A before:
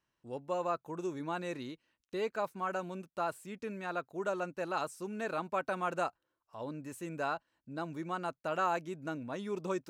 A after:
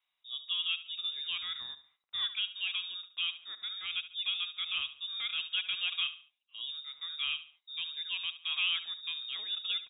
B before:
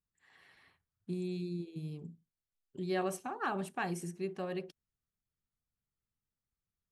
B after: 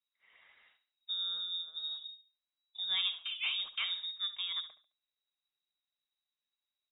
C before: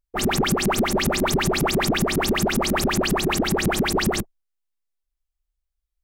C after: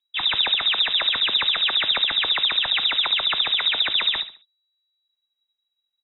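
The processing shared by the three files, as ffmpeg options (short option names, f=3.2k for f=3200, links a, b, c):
-filter_complex "[0:a]asplit=2[a][b];[b]aecho=0:1:71|142|213:0.211|0.0697|0.023[c];[a][c]amix=inputs=2:normalize=0,lowpass=f=3.3k:t=q:w=0.5098,lowpass=f=3.3k:t=q:w=0.6013,lowpass=f=3.3k:t=q:w=0.9,lowpass=f=3.3k:t=q:w=2.563,afreqshift=-3900"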